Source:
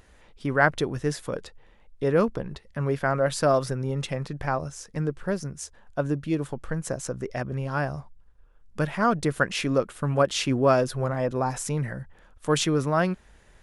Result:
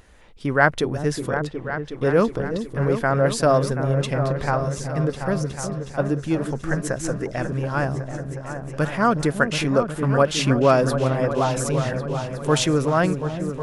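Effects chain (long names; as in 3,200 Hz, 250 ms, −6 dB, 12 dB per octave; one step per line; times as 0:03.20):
0:06.41–0:07.27: parametric band 1,700 Hz +7.5 dB 0.8 octaves
echo whose low-pass opens from repeat to repeat 366 ms, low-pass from 400 Hz, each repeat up 2 octaves, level −6 dB
level +3.5 dB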